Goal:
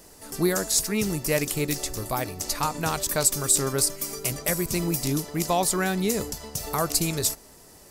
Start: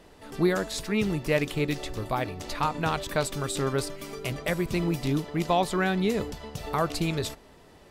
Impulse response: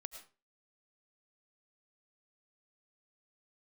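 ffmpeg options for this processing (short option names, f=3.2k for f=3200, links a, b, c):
-af "aexciter=amount=4.8:drive=6.9:freq=4.9k"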